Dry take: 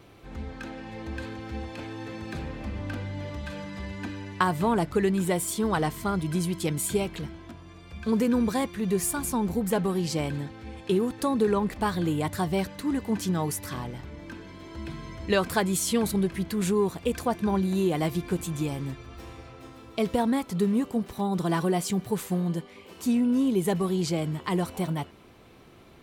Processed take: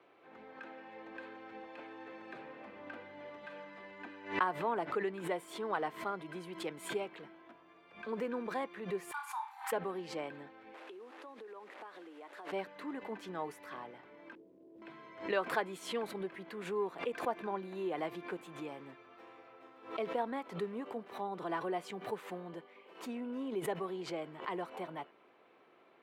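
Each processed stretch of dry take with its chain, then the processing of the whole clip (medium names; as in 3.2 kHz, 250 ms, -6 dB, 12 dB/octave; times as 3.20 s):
9.11–9.72 s: brick-wall FIR high-pass 750 Hz + flutter echo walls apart 5.2 m, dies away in 0.35 s
10.74–12.52 s: one-bit delta coder 64 kbps, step -33.5 dBFS + high-pass 270 Hz 24 dB/octave + compression 16:1, threshold -36 dBFS
14.35–14.82 s: inverse Chebyshev low-pass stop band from 1.8 kHz, stop band 60 dB + short-mantissa float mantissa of 4-bit
whole clip: high-pass 120 Hz 24 dB/octave; three-band isolator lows -22 dB, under 340 Hz, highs -21 dB, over 2.9 kHz; swell ahead of each attack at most 130 dB/s; trim -7 dB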